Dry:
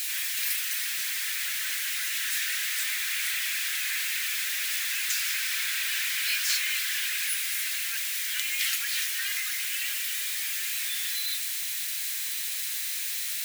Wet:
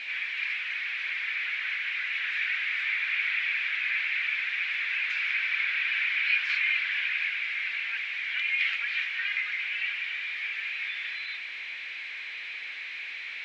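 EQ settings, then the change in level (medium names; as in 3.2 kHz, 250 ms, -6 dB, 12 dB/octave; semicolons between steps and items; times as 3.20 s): cabinet simulation 240–2900 Hz, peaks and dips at 260 Hz +10 dB, 450 Hz +5 dB, 2.3 kHz +9 dB; 0.0 dB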